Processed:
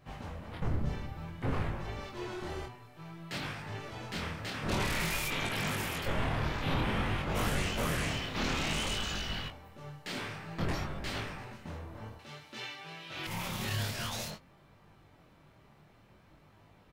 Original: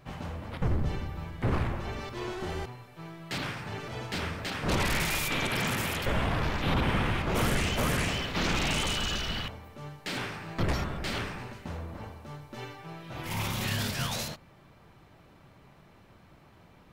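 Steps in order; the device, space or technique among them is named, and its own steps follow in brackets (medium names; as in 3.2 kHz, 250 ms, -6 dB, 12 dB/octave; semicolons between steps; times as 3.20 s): double-tracked vocal (doubling 19 ms -10.5 dB; chorus 0.54 Hz, delay 20 ms, depth 7.5 ms); 12.19–13.27 s: frequency weighting D; trim -1.5 dB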